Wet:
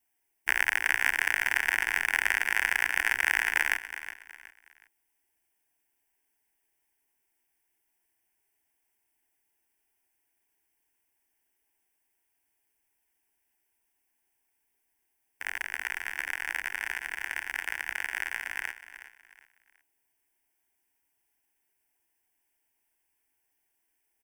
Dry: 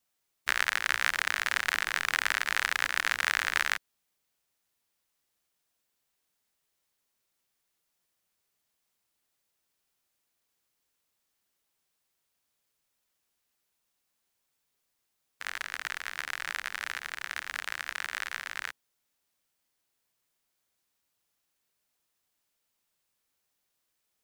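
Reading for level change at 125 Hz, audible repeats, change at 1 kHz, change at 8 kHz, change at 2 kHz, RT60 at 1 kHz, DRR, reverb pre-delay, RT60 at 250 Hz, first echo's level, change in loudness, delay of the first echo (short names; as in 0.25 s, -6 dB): n/a, 3, -2.0 dB, -0.5 dB, +3.0 dB, none, none, none, none, -13.0 dB, +2.0 dB, 0.368 s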